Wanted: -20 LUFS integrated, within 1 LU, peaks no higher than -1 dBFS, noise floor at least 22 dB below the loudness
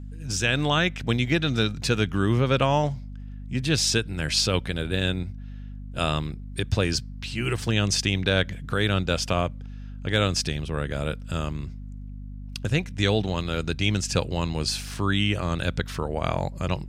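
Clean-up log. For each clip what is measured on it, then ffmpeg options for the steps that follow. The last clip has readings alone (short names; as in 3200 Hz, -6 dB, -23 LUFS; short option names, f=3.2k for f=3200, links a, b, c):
hum 50 Hz; harmonics up to 250 Hz; hum level -34 dBFS; loudness -25.5 LUFS; peak -7.0 dBFS; loudness target -20.0 LUFS
-> -af "bandreject=f=50:t=h:w=4,bandreject=f=100:t=h:w=4,bandreject=f=150:t=h:w=4,bandreject=f=200:t=h:w=4,bandreject=f=250:t=h:w=4"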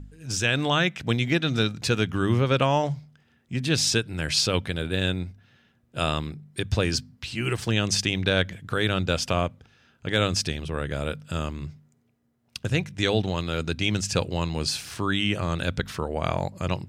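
hum none; loudness -26.0 LUFS; peak -7.5 dBFS; loudness target -20.0 LUFS
-> -af "volume=6dB"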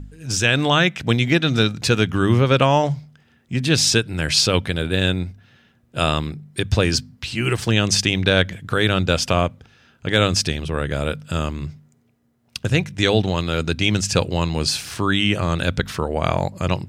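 loudness -20.0 LUFS; peak -1.5 dBFS; noise floor -59 dBFS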